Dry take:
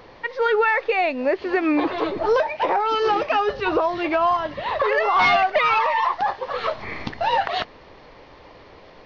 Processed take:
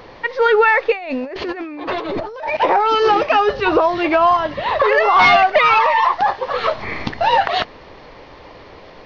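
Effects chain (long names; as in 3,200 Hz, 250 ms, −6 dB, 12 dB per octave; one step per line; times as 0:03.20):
0:00.92–0:02.57: compressor whose output falls as the input rises −32 dBFS, ratio −1
level +6 dB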